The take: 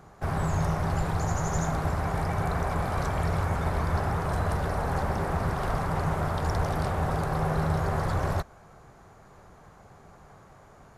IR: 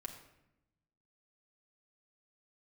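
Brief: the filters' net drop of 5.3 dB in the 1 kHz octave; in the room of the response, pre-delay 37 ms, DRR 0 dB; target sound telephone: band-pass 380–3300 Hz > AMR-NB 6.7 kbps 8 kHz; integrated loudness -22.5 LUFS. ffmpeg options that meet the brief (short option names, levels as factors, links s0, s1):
-filter_complex "[0:a]equalizer=f=1000:t=o:g=-7,asplit=2[s0][s1];[1:a]atrim=start_sample=2205,adelay=37[s2];[s1][s2]afir=irnorm=-1:irlink=0,volume=1.33[s3];[s0][s3]amix=inputs=2:normalize=0,highpass=380,lowpass=3300,volume=4.47" -ar 8000 -c:a libopencore_amrnb -b:a 6700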